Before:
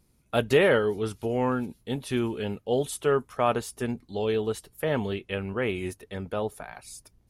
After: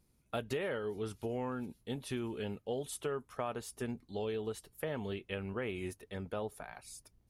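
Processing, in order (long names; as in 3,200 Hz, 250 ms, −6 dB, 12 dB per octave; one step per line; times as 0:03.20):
downward compressor 6 to 1, threshold −27 dBFS, peak gain reduction 11 dB
level −6.5 dB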